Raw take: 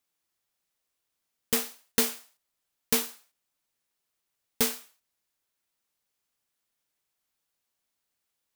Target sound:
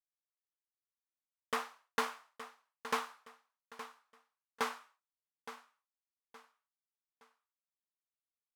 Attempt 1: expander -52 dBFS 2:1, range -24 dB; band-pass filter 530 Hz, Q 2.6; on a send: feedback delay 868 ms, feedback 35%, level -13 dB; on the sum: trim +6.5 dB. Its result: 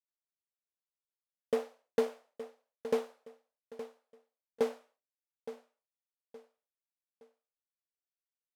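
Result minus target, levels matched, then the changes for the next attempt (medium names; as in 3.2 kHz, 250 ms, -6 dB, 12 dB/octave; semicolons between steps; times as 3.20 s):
1 kHz band -11.0 dB
change: band-pass filter 1.1 kHz, Q 2.6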